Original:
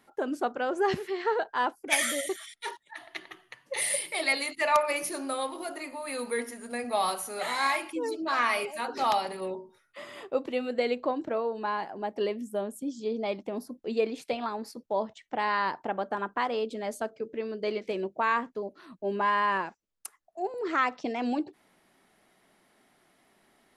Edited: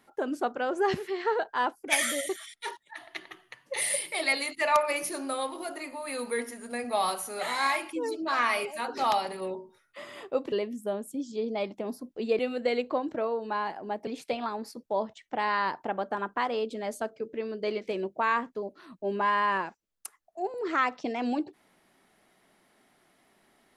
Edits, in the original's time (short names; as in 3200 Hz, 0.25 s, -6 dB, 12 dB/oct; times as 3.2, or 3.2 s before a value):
10.52–12.2 move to 14.07